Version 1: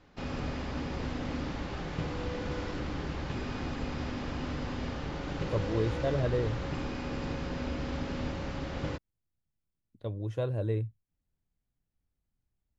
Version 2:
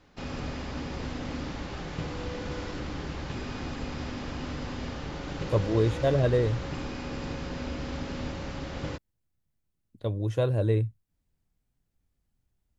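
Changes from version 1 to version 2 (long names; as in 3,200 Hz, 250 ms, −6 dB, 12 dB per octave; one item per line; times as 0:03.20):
speech +6.0 dB
master: add high-shelf EQ 5,300 Hz +7 dB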